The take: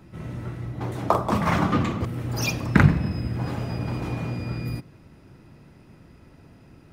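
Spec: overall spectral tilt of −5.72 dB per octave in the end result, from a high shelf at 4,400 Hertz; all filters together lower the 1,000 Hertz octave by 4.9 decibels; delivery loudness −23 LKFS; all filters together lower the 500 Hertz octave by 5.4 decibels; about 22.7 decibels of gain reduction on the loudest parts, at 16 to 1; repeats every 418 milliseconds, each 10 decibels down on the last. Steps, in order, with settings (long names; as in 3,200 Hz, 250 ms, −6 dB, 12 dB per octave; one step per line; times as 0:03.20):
parametric band 500 Hz −6 dB
parametric band 1,000 Hz −5 dB
high-shelf EQ 4,400 Hz +6 dB
downward compressor 16 to 1, threshold −34 dBFS
repeating echo 418 ms, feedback 32%, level −10 dB
level +15.5 dB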